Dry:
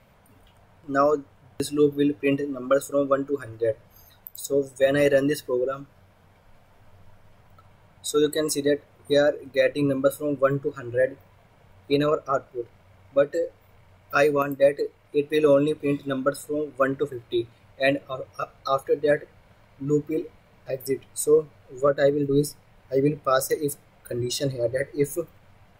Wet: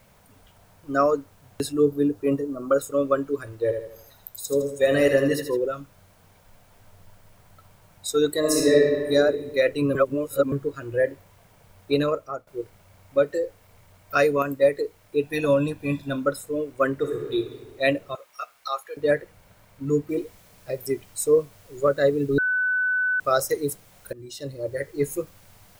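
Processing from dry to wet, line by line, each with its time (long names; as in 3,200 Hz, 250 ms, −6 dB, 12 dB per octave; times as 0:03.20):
0:01.72–0:02.79: flat-topped bell 3,100 Hz −13.5 dB
0:03.59–0:05.57: repeating echo 80 ms, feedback 40%, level −7 dB
0:08.39–0:09.12: thrown reverb, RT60 1.6 s, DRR −4.5 dB
0:09.95–0:10.52: reverse
0:12.00–0:12.47: fade out, to −17 dB
0:15.23–0:16.16: comb filter 1.2 ms
0:16.94–0:17.34: thrown reverb, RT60 1.5 s, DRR 0.5 dB
0:18.15–0:18.97: high-pass filter 1,100 Hz
0:20.09: noise floor change −64 dB −57 dB
0:22.38–0:23.20: beep over 1,500 Hz −20 dBFS
0:24.13–0:25.14: fade in, from −19 dB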